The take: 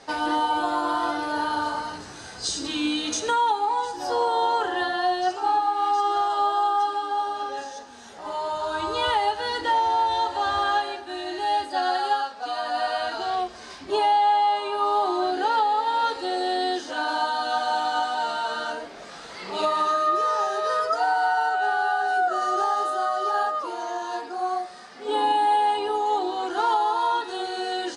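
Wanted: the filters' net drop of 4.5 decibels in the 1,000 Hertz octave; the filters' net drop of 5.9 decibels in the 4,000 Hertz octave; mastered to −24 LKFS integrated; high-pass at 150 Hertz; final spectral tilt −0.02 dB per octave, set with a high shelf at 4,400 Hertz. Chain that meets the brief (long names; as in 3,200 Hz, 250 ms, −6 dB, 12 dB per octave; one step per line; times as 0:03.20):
high-pass filter 150 Hz
parametric band 1,000 Hz −5.5 dB
parametric band 4,000 Hz −4 dB
high-shelf EQ 4,400 Hz −6.5 dB
level +4.5 dB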